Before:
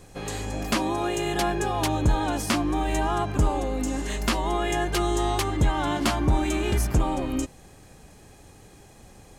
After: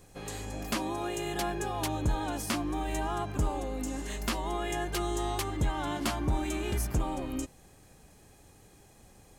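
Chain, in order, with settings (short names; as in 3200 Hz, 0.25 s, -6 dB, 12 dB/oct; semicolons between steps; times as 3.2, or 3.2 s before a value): high shelf 12000 Hz +9.5 dB; gain -7.5 dB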